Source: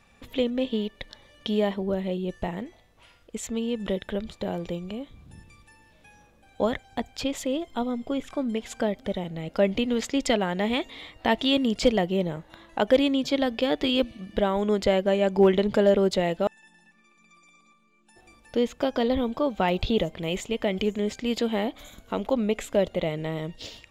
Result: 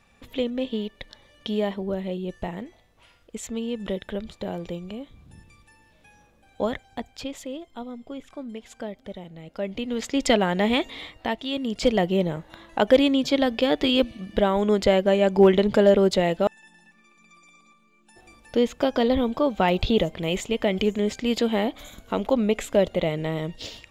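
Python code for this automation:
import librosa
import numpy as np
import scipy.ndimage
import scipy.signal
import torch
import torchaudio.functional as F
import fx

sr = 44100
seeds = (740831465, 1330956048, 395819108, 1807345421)

y = fx.gain(x, sr, db=fx.line((6.72, -1.0), (7.67, -8.0), (9.62, -8.0), (10.32, 4.0), (11.04, 4.0), (11.42, -8.0), (12.04, 3.0)))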